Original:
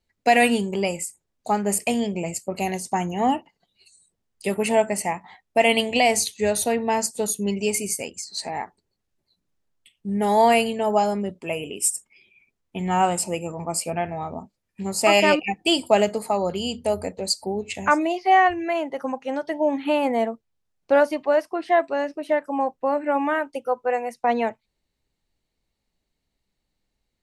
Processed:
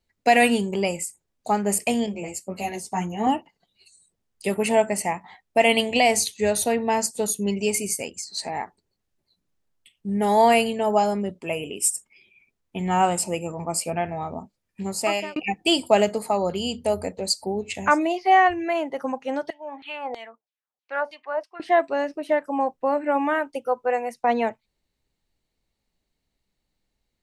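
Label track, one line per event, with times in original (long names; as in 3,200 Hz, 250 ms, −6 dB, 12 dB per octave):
2.060000	3.270000	string-ensemble chorus
14.810000	15.360000	fade out
19.500000	21.600000	auto-filter band-pass saw down 3.1 Hz 610–4,200 Hz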